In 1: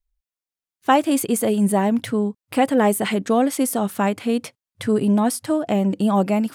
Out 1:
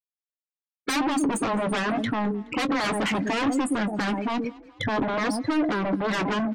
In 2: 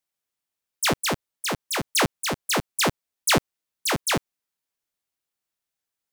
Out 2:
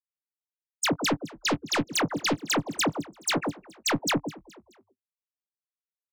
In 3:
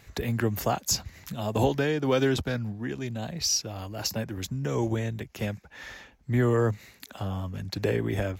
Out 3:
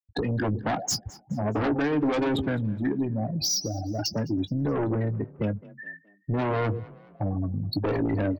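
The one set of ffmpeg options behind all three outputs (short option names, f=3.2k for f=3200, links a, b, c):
-filter_complex "[0:a]lowpass=6.9k,asplit=2[a][b];[b]aecho=0:1:118:0.168[c];[a][c]amix=inputs=2:normalize=0,aeval=exprs='0.0891*(abs(mod(val(0)/0.0891+3,4)-2)-1)':c=same,highpass=91,afftfilt=real='re*gte(hypot(re,im),0.0501)':imag='im*gte(hypot(re,im),0.0501)':win_size=1024:overlap=0.75,aeval=exprs='0.133*(cos(1*acos(clip(val(0)/0.133,-1,1)))-cos(1*PI/2))+0.0422*(cos(5*acos(clip(val(0)/0.133,-1,1)))-cos(5*PI/2))':c=same,equalizer=f=290:w=6.9:g=12,asplit=2[d][e];[e]adelay=19,volume=-13dB[f];[d][f]amix=inputs=2:normalize=0,asplit=2[g][h];[h]asplit=3[i][j][k];[i]adelay=211,afreqshift=32,volume=-23.5dB[l];[j]adelay=422,afreqshift=64,volume=-30.6dB[m];[k]adelay=633,afreqshift=96,volume=-37.8dB[n];[l][m][n]amix=inputs=3:normalize=0[o];[g][o]amix=inputs=2:normalize=0,acompressor=threshold=-28dB:ratio=1.5"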